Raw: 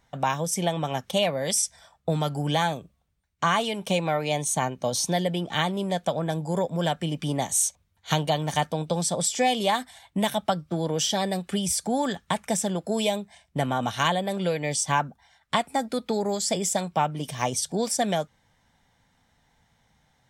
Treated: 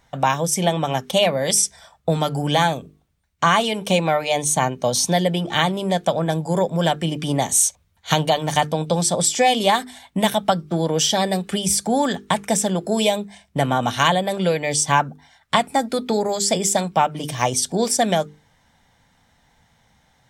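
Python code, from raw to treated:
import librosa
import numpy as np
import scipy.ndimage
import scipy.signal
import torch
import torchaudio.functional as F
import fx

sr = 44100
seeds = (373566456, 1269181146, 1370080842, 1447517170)

y = fx.hum_notches(x, sr, base_hz=50, count=9)
y = y * 10.0 ** (6.5 / 20.0)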